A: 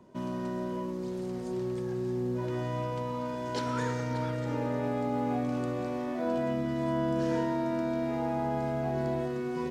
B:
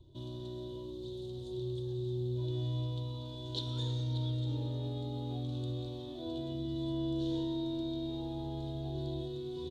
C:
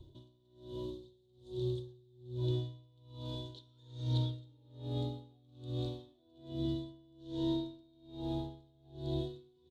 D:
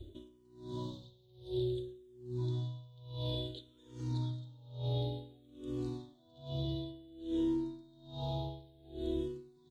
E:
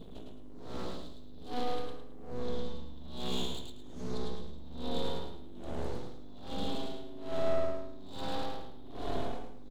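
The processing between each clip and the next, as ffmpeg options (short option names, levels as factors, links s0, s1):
-filter_complex "[0:a]firequalizer=gain_entry='entry(120,0);entry(190,-29);entry(320,-5);entry(460,-17);entry(900,-20);entry(1300,-29);entry(2200,-30);entry(3600,9);entry(5000,-14)':delay=0.05:min_phase=1,acrossover=split=150|1400[s0][s1][s2];[s0]acompressor=mode=upward:threshold=0.00224:ratio=2.5[s3];[s3][s1][s2]amix=inputs=3:normalize=0,volume=1.5"
-af "aeval=exprs='val(0)*pow(10,-32*(0.5-0.5*cos(2*PI*1.2*n/s))/20)':c=same,volume=1.5"
-filter_complex "[0:a]acompressor=threshold=0.0126:ratio=4,asplit=2[s0][s1];[s1]afreqshift=-0.56[s2];[s0][s2]amix=inputs=2:normalize=1,volume=2.66"
-af "aeval=exprs='val(0)+0.00355*(sin(2*PI*50*n/s)+sin(2*PI*2*50*n/s)/2+sin(2*PI*3*50*n/s)/3+sin(2*PI*4*50*n/s)/4+sin(2*PI*5*50*n/s)/5)':c=same,aeval=exprs='abs(val(0))':c=same,aecho=1:1:108|216|324|432:0.668|0.201|0.0602|0.018,volume=1.41"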